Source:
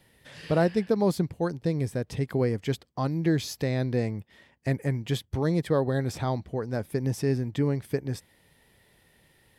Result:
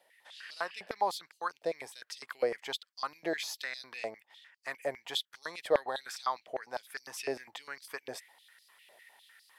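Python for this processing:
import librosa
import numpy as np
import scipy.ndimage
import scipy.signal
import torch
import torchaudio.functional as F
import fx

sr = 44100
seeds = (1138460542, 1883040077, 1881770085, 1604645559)

y = fx.rider(x, sr, range_db=10, speed_s=2.0)
y = fx.filter_held_highpass(y, sr, hz=9.9, low_hz=630.0, high_hz=4700.0)
y = y * librosa.db_to_amplitude(-4.0)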